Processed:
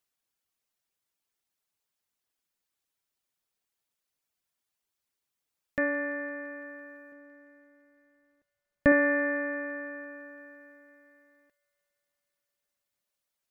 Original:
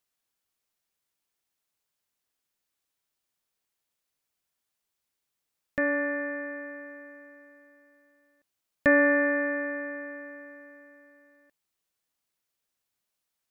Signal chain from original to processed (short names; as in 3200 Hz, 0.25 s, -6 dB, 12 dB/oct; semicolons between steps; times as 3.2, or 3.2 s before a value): reverb removal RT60 0.54 s; 7.12–8.92 tilt -2 dB/oct; on a send: thin delay 0.169 s, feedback 78%, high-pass 2200 Hz, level -20 dB; on the sum: gain -1 dB